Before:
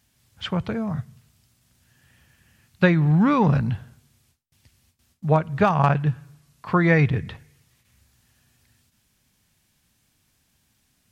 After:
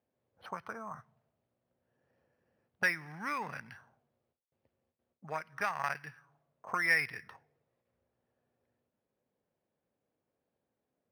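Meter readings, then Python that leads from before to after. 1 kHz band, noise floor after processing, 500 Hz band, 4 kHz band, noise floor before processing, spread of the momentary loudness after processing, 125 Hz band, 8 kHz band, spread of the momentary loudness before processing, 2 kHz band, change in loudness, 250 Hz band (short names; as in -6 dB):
-13.0 dB, under -85 dBFS, -20.5 dB, -10.5 dB, -68 dBFS, 18 LU, -31.5 dB, n/a, 15 LU, -4.5 dB, -13.0 dB, -28.0 dB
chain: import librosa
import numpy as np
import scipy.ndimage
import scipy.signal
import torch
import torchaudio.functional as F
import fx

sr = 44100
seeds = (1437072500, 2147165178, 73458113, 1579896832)

y = fx.tracing_dist(x, sr, depth_ms=0.039)
y = fx.auto_wah(y, sr, base_hz=500.0, top_hz=2000.0, q=3.1, full_db=-19.0, direction='up')
y = np.interp(np.arange(len(y)), np.arange(len(y))[::6], y[::6])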